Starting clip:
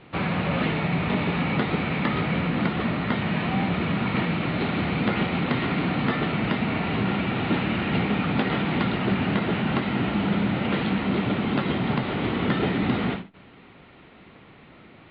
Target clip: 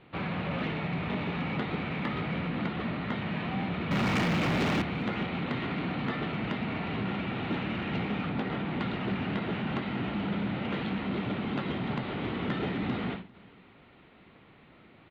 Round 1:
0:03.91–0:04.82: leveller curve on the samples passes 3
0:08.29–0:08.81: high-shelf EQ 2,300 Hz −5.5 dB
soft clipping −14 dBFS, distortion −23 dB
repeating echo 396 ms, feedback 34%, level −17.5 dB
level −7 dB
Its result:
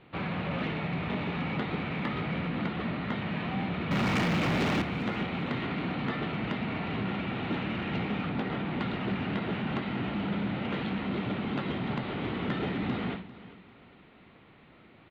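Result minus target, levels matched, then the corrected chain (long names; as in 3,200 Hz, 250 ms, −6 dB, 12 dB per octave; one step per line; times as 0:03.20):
echo-to-direct +8 dB
0:03.91–0:04.82: leveller curve on the samples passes 3
0:08.29–0:08.81: high-shelf EQ 2,300 Hz −5.5 dB
soft clipping −14 dBFS, distortion −23 dB
repeating echo 396 ms, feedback 34%, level −25.5 dB
level −7 dB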